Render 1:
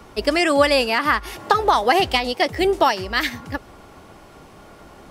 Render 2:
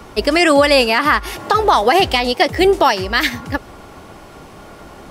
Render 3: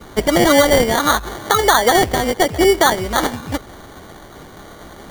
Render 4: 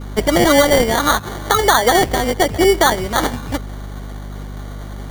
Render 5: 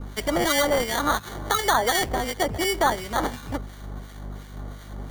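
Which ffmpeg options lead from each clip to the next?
ffmpeg -i in.wav -af "alimiter=level_in=7.5dB:limit=-1dB:release=50:level=0:latency=1,volume=-1dB" out.wav
ffmpeg -i in.wav -af "adynamicequalizer=threshold=0.0398:dfrequency=2600:dqfactor=0.81:tfrequency=2600:tqfactor=0.81:attack=5:release=100:ratio=0.375:range=2:mode=cutabove:tftype=bell,acrusher=samples=17:mix=1:aa=0.000001" out.wav
ffmpeg -i in.wav -af "aeval=exprs='val(0)+0.0398*(sin(2*PI*50*n/s)+sin(2*PI*2*50*n/s)/2+sin(2*PI*3*50*n/s)/3+sin(2*PI*4*50*n/s)/4+sin(2*PI*5*50*n/s)/5)':channel_layout=same" out.wav
ffmpeg -i in.wav -filter_complex "[0:a]acrossover=split=1400[link_01][link_02];[link_01]aeval=exprs='val(0)*(1-0.7/2+0.7/2*cos(2*PI*2.8*n/s))':channel_layout=same[link_03];[link_02]aeval=exprs='val(0)*(1-0.7/2-0.7/2*cos(2*PI*2.8*n/s))':channel_layout=same[link_04];[link_03][link_04]amix=inputs=2:normalize=0,acrossover=split=690[link_05][link_06];[link_05]asoftclip=type=tanh:threshold=-18.5dB[link_07];[link_07][link_06]amix=inputs=2:normalize=0,volume=-4dB" out.wav

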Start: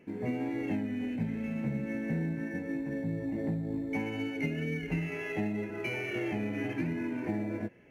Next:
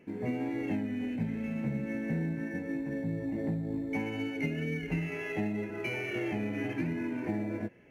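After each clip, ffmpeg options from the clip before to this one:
ffmpeg -i in.wav -af anull out.wav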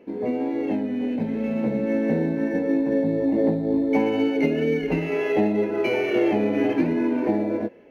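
ffmpeg -i in.wav -af "equalizer=frequency=125:width_type=o:width=1:gain=-8,equalizer=frequency=250:width_type=o:width=1:gain=6,equalizer=frequency=500:width_type=o:width=1:gain=11,equalizer=frequency=1000:width_type=o:width=1:gain=6,equalizer=frequency=2000:width_type=o:width=1:gain=-3,equalizer=frequency=4000:width_type=o:width=1:gain=8,equalizer=frequency=8000:width_type=o:width=1:gain=-6,dynaudnorm=framelen=520:gausssize=5:maxgain=5.5dB" out.wav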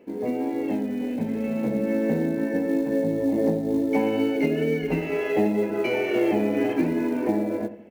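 ffmpeg -i in.wav -filter_complex "[0:a]acrusher=bits=8:mode=log:mix=0:aa=0.000001,asplit=2[link_01][link_02];[link_02]adelay=82,lowpass=frequency=1100:poles=1,volume=-12dB,asplit=2[link_03][link_04];[link_04]adelay=82,lowpass=frequency=1100:poles=1,volume=0.53,asplit=2[link_05][link_06];[link_06]adelay=82,lowpass=frequency=1100:poles=1,volume=0.53,asplit=2[link_07][link_08];[link_08]adelay=82,lowpass=frequency=1100:poles=1,volume=0.53,asplit=2[link_09][link_10];[link_10]adelay=82,lowpass=frequency=1100:poles=1,volume=0.53,asplit=2[link_11][link_12];[link_12]adelay=82,lowpass=frequency=1100:poles=1,volume=0.53[link_13];[link_01][link_03][link_05][link_07][link_09][link_11][link_13]amix=inputs=7:normalize=0,volume=-1.5dB" out.wav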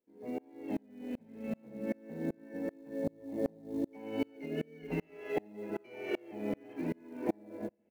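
ffmpeg -i in.wav -af "aeval=exprs='val(0)*pow(10,-33*if(lt(mod(-2.6*n/s,1),2*abs(-2.6)/1000),1-mod(-2.6*n/s,1)/(2*abs(-2.6)/1000),(mod(-2.6*n/s,1)-2*abs(-2.6)/1000)/(1-2*abs(-2.6)/1000))/20)':channel_layout=same,volume=-6dB" out.wav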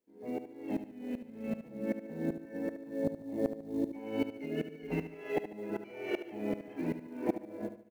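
ffmpeg -i in.wav -af "aecho=1:1:73|146|219|292:0.282|0.116|0.0474|0.0194,volume=1dB" out.wav

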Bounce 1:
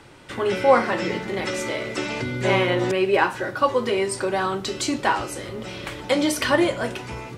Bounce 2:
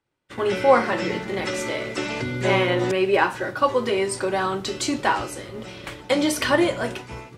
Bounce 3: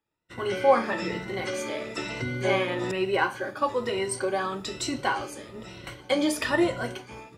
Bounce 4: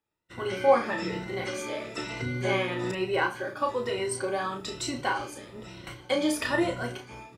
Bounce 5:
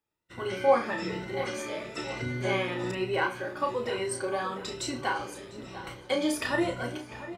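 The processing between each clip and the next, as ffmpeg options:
ffmpeg -i in.wav -af "agate=range=-33dB:threshold=-29dB:ratio=3:detection=peak" out.wav
ffmpeg -i in.wav -af "afftfilt=real='re*pow(10,11/40*sin(2*PI*(2*log(max(b,1)*sr/1024/100)/log(2)-(1.1)*(pts-256)/sr)))':imag='im*pow(10,11/40*sin(2*PI*(2*log(max(b,1)*sr/1024/100)/log(2)-(1.1)*(pts-256)/sr)))':win_size=1024:overlap=0.75,volume=-6.5dB" out.wav
ffmpeg -i in.wav -filter_complex "[0:a]asplit=2[link_01][link_02];[link_02]adelay=33,volume=-6.5dB[link_03];[link_01][link_03]amix=inputs=2:normalize=0,volume=-2.5dB" out.wav
ffmpeg -i in.wav -filter_complex "[0:a]asplit=2[link_01][link_02];[link_02]adelay=698,lowpass=frequency=2400:poles=1,volume=-13dB,asplit=2[link_03][link_04];[link_04]adelay=698,lowpass=frequency=2400:poles=1,volume=0.52,asplit=2[link_05][link_06];[link_06]adelay=698,lowpass=frequency=2400:poles=1,volume=0.52,asplit=2[link_07][link_08];[link_08]adelay=698,lowpass=frequency=2400:poles=1,volume=0.52,asplit=2[link_09][link_10];[link_10]adelay=698,lowpass=frequency=2400:poles=1,volume=0.52[link_11];[link_01][link_03][link_05][link_07][link_09][link_11]amix=inputs=6:normalize=0,volume=-1.5dB" out.wav

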